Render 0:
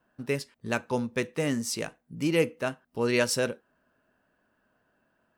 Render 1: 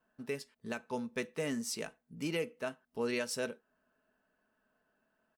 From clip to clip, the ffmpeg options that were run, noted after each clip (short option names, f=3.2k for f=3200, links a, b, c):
-af "equalizer=f=96:t=o:w=2.2:g=-4.5,aecho=1:1:4.6:0.36,alimiter=limit=-18.5dB:level=0:latency=1:release=318,volume=-6.5dB"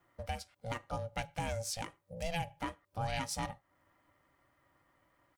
-af "acompressor=threshold=-53dB:ratio=1.5,aeval=exprs='val(0)*sin(2*PI*340*n/s)':c=same,volume=9dB"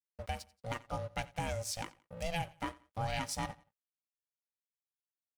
-af "aeval=exprs='sgn(val(0))*max(abs(val(0))-0.00211,0)':c=same,aecho=1:1:88|176:0.0891|0.0276,volume=1dB"